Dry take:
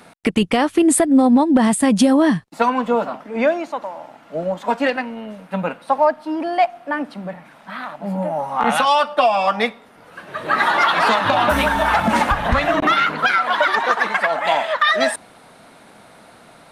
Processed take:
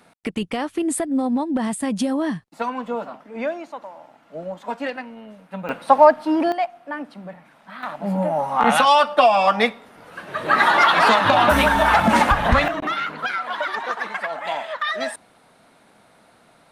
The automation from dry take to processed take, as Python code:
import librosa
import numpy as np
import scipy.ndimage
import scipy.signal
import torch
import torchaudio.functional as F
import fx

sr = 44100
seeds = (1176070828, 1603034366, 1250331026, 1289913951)

y = fx.gain(x, sr, db=fx.steps((0.0, -8.5), (5.69, 4.0), (6.52, -7.0), (7.83, 1.0), (12.68, -8.5)))